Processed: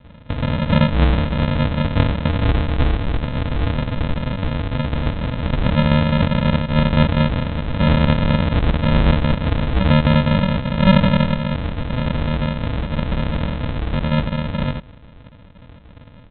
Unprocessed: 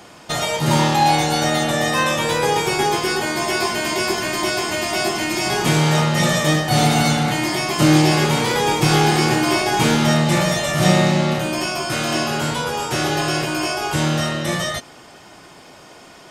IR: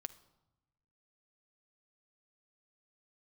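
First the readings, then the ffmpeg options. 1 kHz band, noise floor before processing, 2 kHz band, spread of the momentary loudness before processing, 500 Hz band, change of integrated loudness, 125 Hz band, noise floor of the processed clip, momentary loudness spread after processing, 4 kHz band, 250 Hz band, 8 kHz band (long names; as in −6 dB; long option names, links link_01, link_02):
−7.0 dB, −44 dBFS, −6.5 dB, 6 LU, −3.5 dB, −1.0 dB, +4.0 dB, −43 dBFS, 8 LU, −7.5 dB, +1.0 dB, below −40 dB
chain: -af "aecho=1:1:4.6:0.72,aresample=8000,acrusher=samples=21:mix=1:aa=0.000001,aresample=44100"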